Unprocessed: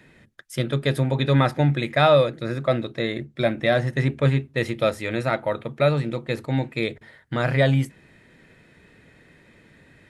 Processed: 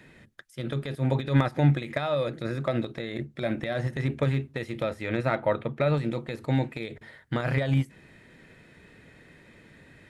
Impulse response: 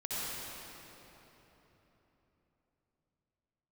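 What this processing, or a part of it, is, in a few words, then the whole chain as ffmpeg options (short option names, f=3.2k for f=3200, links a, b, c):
de-esser from a sidechain: -filter_complex "[0:a]asettb=1/sr,asplit=3[a][b][c];[a]atrim=end=4.804[d];[b]atrim=start=4.8:end=5.94,asetpts=PTS-STARTPTS,afade=t=in:d=0.004:c=qsin,afade=t=out:st=1.136:d=0.004:c=qsin,bass=f=250:g=1,treble=f=4k:g=-8[e];[c]atrim=start=5.936[f];[d][e]acrossfade=d=0.004:c1=hsin:c2=qsin[g];[g][f]acrossfade=d=0.004:c1=qsin:c2=hsin,asplit=2[h][i];[i]highpass=f=5.4k:w=0.5412,highpass=f=5.4k:w=1.3066,apad=whole_len=445192[j];[h][j]sidechaincompress=threshold=-54dB:ratio=5:attack=0.7:release=59"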